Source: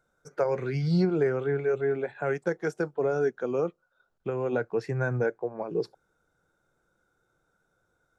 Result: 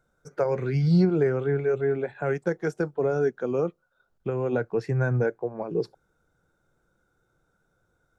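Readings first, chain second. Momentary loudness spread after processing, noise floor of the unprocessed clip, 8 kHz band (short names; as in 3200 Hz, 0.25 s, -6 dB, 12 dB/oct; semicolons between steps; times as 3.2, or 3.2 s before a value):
10 LU, -75 dBFS, n/a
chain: low shelf 250 Hz +7 dB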